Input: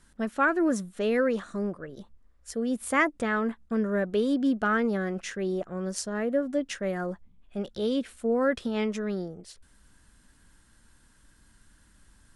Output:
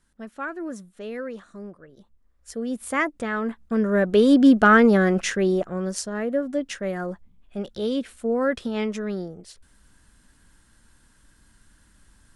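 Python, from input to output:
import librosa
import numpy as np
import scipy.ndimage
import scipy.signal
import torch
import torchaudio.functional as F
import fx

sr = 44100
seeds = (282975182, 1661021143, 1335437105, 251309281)

y = fx.gain(x, sr, db=fx.line((1.98, -8.0), (2.53, 0.0), (3.32, 0.0), (4.39, 11.0), (5.23, 11.0), (6.1, 2.0)))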